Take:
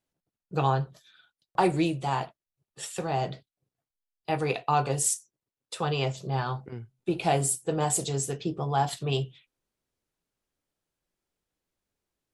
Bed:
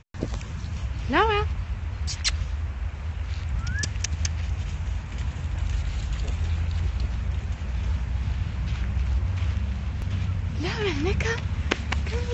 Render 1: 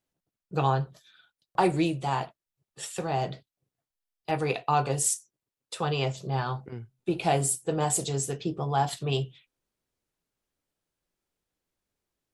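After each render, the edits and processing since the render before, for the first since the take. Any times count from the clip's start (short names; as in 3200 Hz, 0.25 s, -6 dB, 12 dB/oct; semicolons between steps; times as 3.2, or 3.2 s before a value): 3.18–4.31 overloaded stage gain 20.5 dB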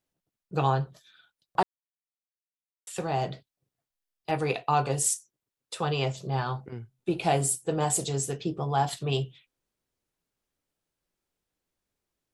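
1.63–2.87 mute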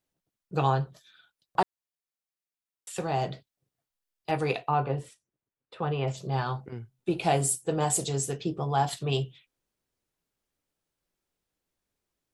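4.68–6.08 air absorption 470 m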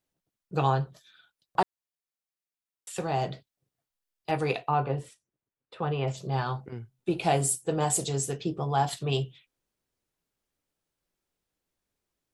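nothing audible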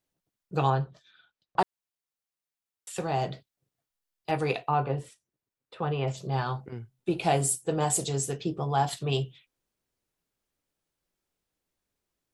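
0.7–1.59 air absorption 110 m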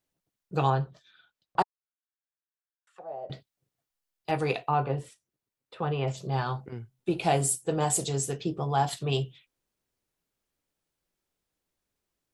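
1.62–3.3 auto-wah 570–1600 Hz, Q 6.7, down, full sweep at -26.5 dBFS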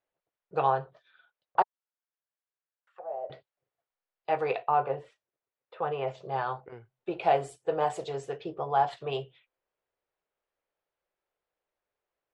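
LPF 2300 Hz 12 dB/oct; resonant low shelf 350 Hz -11.5 dB, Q 1.5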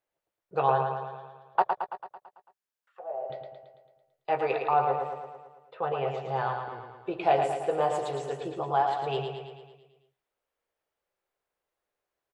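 doubler 15 ms -13 dB; feedback echo 0.111 s, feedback 58%, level -5.5 dB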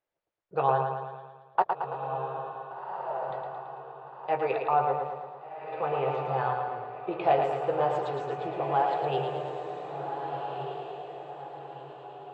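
air absorption 150 m; diffused feedback echo 1.525 s, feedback 41%, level -6 dB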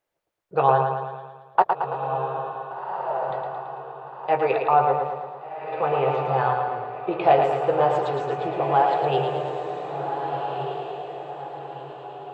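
gain +6.5 dB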